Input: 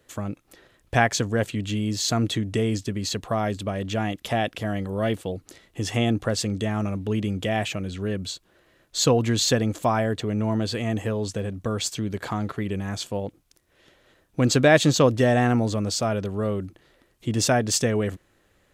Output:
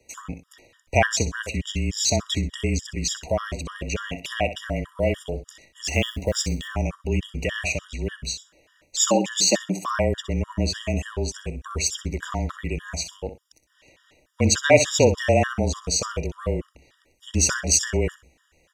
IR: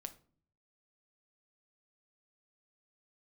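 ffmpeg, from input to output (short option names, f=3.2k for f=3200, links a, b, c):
-filter_complex "[0:a]equalizer=f=100:t=o:w=0.67:g=5,equalizer=f=630:t=o:w=0.67:g=5,equalizer=f=2.5k:t=o:w=0.67:g=9,equalizer=f=6.3k:t=o:w=0.67:g=11,afreqshift=-29,asettb=1/sr,asplit=3[a][b][c];[a]atrim=end=5.844[d];[b]atrim=start=5.84:end=6.68,asetpts=PTS-STARTPTS,afade=t=in:d=0.004:c=qsin,afade=t=out:st=0.836:d=0.004:c=qsin,acrusher=bits=7:mode=log:mix=0:aa=0.000001[e];[c]atrim=start=6.676[f];[d][e]acrossfade=d=0.004:c1=hsin:c2=qsin[g];[g][f]acrossfade=d=0.004:c1=qsin:c2=hsin,asettb=1/sr,asplit=3[h][i][j];[h]atrim=end=8.994[k];[i]atrim=start=8.99:end=9.98,asetpts=PTS-STARTPTS,afade=t=in:d=0.004:c=qsin,afade=t=out:st=0.986:d=0.004:c=qsin,afreqshift=110[l];[j]atrim=start=9.976[m];[k][l]acrossfade=d=0.004:c1=hsin:c2=qsin[n];[n][m]acrossfade=d=0.004:c1=qsin:c2=hsin,asplit=2[o][p];[p]aecho=0:1:63|126|189:0.266|0.0612|0.0141[q];[o][q]amix=inputs=2:normalize=0,afftfilt=real='re*gt(sin(2*PI*3.4*pts/sr)*(1-2*mod(floor(b*sr/1024/960),2)),0)':imag='im*gt(sin(2*PI*3.4*pts/sr)*(1-2*mod(floor(b*sr/1024/960),2)),0)':win_size=1024:overlap=0.75,volume=-1dB"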